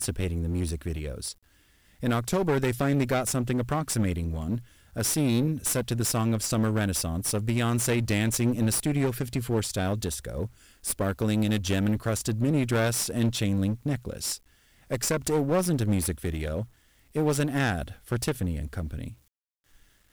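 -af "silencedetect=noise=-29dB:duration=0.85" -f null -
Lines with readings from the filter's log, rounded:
silence_start: 19.08
silence_end: 20.12 | silence_duration: 1.04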